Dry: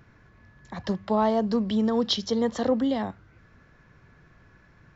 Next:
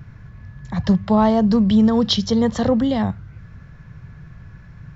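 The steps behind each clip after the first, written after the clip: resonant low shelf 210 Hz +10.5 dB, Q 1.5; trim +6 dB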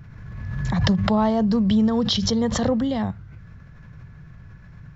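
swell ahead of each attack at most 32 dB/s; trim -4.5 dB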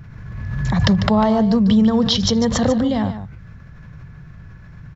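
delay 147 ms -11 dB; trim +4 dB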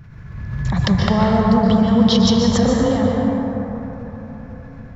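plate-style reverb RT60 4.1 s, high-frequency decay 0.3×, pre-delay 110 ms, DRR -1.5 dB; trim -2.5 dB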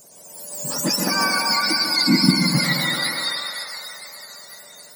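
spectrum inverted on a logarithmic axis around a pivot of 1 kHz

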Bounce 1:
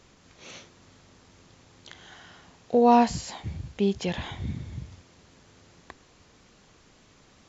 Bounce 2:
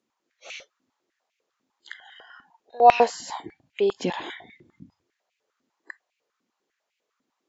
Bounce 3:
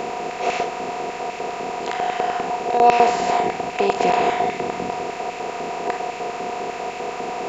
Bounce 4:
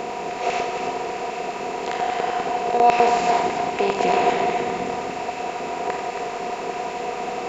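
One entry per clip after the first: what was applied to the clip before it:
spectral noise reduction 24 dB; step-sequenced high-pass 10 Hz 250–2400 Hz
spectral levelling over time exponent 0.2; trim -2.5 dB
multi-head delay 91 ms, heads first and third, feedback 47%, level -7.5 dB; trim -2 dB

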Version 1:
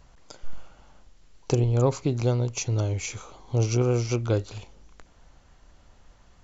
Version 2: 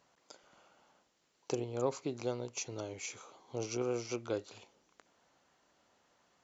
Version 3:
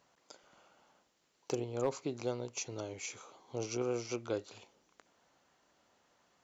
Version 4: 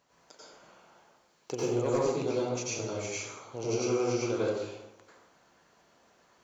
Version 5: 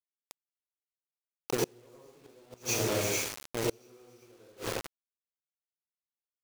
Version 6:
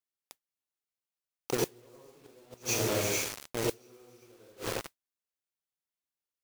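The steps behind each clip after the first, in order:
high-pass 270 Hz 12 dB/octave; trim -8.5 dB
overload inside the chain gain 23 dB
plate-style reverb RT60 1 s, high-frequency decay 0.6×, pre-delay 80 ms, DRR -8 dB; trim -1 dB
feedback delay 275 ms, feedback 57%, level -15.5 dB; bit crusher 6-bit; inverted gate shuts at -23 dBFS, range -32 dB; trim +4 dB
modulation noise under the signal 16 dB

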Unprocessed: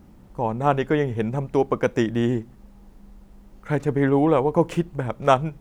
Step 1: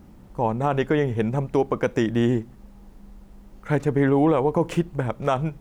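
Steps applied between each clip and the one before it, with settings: peak limiter -12.5 dBFS, peak gain reduction 9 dB; trim +1.5 dB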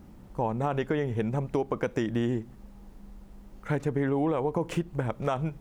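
compression 3:1, threshold -23 dBFS, peak gain reduction 6.5 dB; trim -2 dB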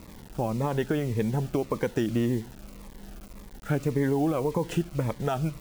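word length cut 8-bit, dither none; Shepard-style phaser falling 1.8 Hz; trim +2.5 dB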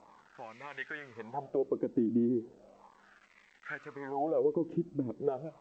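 wah-wah 0.36 Hz 270–2100 Hz, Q 3.9; trim +3 dB; G.722 64 kbps 16 kHz

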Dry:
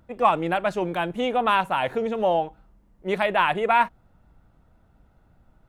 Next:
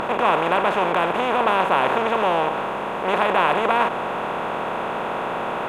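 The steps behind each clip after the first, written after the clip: spectral levelling over time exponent 0.2; trim -5.5 dB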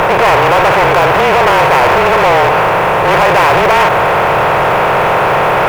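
frequency shift -32 Hz; waveshaping leveller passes 5; graphic EQ 125/250/500/2000/4000/8000 Hz +6/-11/+3/+4/-5/-5 dB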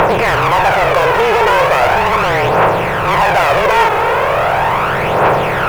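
phaser 0.38 Hz, delay 2.4 ms, feedback 49%; trim -4 dB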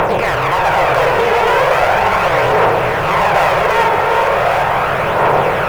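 chunks repeated in reverse 665 ms, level -4.5 dB; on a send: repeats whose band climbs or falls 102 ms, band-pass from 610 Hz, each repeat 1.4 oct, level -2 dB; on the sum: trim -3.5 dB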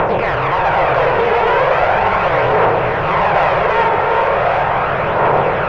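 distance through air 230 m

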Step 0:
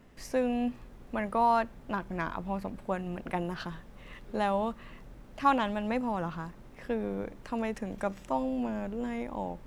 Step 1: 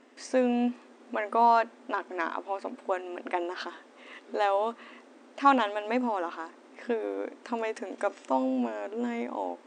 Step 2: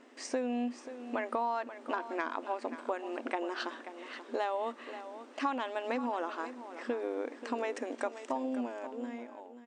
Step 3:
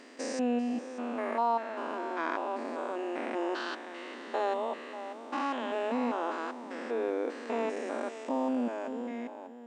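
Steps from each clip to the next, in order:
FFT band-pass 230–9300 Hz; trim +3.5 dB
fade out at the end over 1.76 s; compression 6:1, threshold -30 dBFS, peak gain reduction 14 dB; delay 534 ms -12 dB
spectrogram pixelated in time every 200 ms; trim +5.5 dB

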